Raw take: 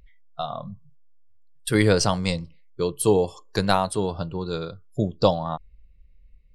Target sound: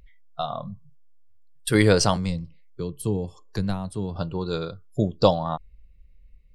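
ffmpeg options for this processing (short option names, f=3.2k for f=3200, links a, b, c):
-filter_complex "[0:a]asettb=1/sr,asplit=3[a][b][c];[a]atrim=end=2.164[d];[b]atrim=start=2.16:end=4.16,asetpts=PTS-STARTPTS,afade=t=in:d=0.004:c=qsin,afade=t=out:st=1.996:d=0.004:c=qsin,acrossover=split=260[e][f];[f]acompressor=threshold=-42dB:ratio=2.5[g];[e][g]amix=inputs=2:normalize=0[h];[c]atrim=start=4.156[i];[d][h]acrossfade=d=0.004:c1=hsin:c2=qsin[j];[j][i]acrossfade=d=0.004:c1=qsin:c2=hsin,volume=1dB"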